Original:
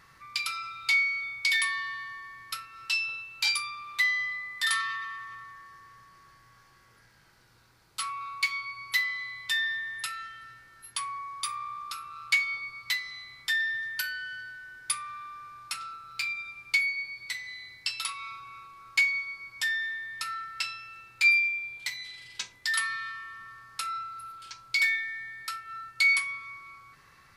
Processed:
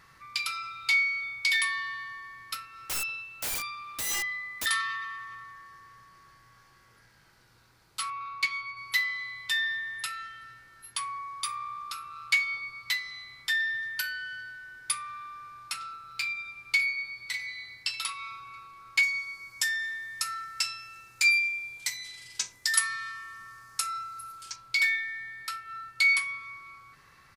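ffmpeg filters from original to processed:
-filter_complex "[0:a]asettb=1/sr,asplit=3[a][b][c];[a]atrim=end=2.544[d];[b]atrim=start=2.54:end=4.66,asetpts=PTS-STARTPTS,afade=t=in:d=0.004:c=qsin,afade=t=out:st=2.116:d=0.004:c=qsin,aeval=exprs='(mod(21.1*val(0)+1,2)-1)/21.1':c=same[e];[c]atrim=start=4.656[f];[d][e]acrossfade=d=0.004:c1=hsin:c2=qsin[g];[g][f]acrossfade=d=0.004:c1=qsin:c2=hsin,asettb=1/sr,asplit=3[h][i][j];[h]atrim=end=8.104[k];[i]atrim=start=8.1:end=8.77,asetpts=PTS-STARTPTS,afade=t=in:d=0.004:c=qsin,afade=t=out:st=0.666:d=0.004:c=qsin,adynamicsmooth=sensitivity=2.5:basefreq=5.7k[l];[j]atrim=start=8.766[m];[k][l]acrossfade=d=0.004:c1=hsin:c2=qsin[n];[n][m]acrossfade=d=0.004:c1=qsin:c2=hsin,asplit=2[o][p];[p]afade=t=in:st=16.05:d=0.01,afade=t=out:st=17.22:d=0.01,aecho=0:1:600|1200|1800:0.223872|0.0671616|0.0201485[q];[o][q]amix=inputs=2:normalize=0,asettb=1/sr,asplit=3[r][s][t];[r]atrim=end=19.034[u];[s]atrim=start=19.03:end=24.56,asetpts=PTS-STARTPTS,afade=t=in:d=0.004:c=qsin,afade=t=out:st=5.526:d=0.004:c=qsin,highshelf=f=4.8k:t=q:w=1.5:g=7.5[v];[t]atrim=start=24.556[w];[u][v]acrossfade=d=0.004:c1=hsin:c2=qsin[x];[x][w]acrossfade=d=0.004:c1=qsin:c2=hsin"

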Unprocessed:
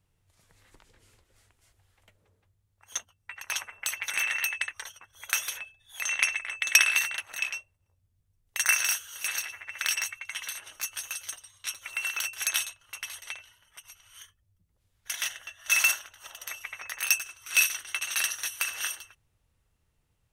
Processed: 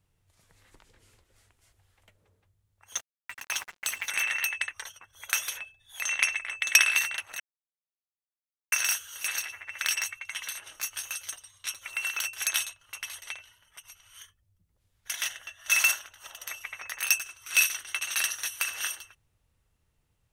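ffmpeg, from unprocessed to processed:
-filter_complex "[0:a]asettb=1/sr,asplit=3[a][b][c];[a]atrim=end=2.964[d];[b]atrim=start=2.96:end=4.06,asetpts=PTS-STARTPTS,afade=t=in:d=0.004:c=qsin,afade=t=out:st=1.096:d=0.004:c=qsin,acrusher=bits=6:mix=0:aa=0.5[e];[c]atrim=start=4.056[f];[d][e]acrossfade=d=0.004:c1=hsin:c2=qsin[g];[g][f]acrossfade=d=0.004:c1=qsin:c2=hsin,asettb=1/sr,asplit=3[h][i][j];[h]atrim=end=10.664[k];[i]atrim=start=10.66:end=11.18,asetpts=PTS-STARTPTS,afade=t=in:d=0.004:c=qsin,afade=t=out:st=0.516:d=0.004:c=qsin,asplit=2[l][m];[m]adelay=29,volume=-11dB[n];[l][n]amix=inputs=2:normalize=0,atrim=end_sample=22932[o];[j]atrim=start=11.176[p];[k][o]acrossfade=d=0.004:c1=hsin:c2=qsin[q];[q][p]acrossfade=d=0.004:c1=qsin:c2=hsin,asplit=3[r][s][t];[r]atrim=end=7.4,asetpts=PTS-STARTPTS,afade=t=out:st=7.396:d=0.004:c=hsin[u];[s]atrim=start=7.4:end=8.72,asetpts=PTS-STARTPTS,volume=0[v];[t]atrim=start=8.72,asetpts=PTS-STARTPTS,afade=t=in:d=0.004:c=hsin[w];[u][v][w]concat=n=3:v=0:a=1"

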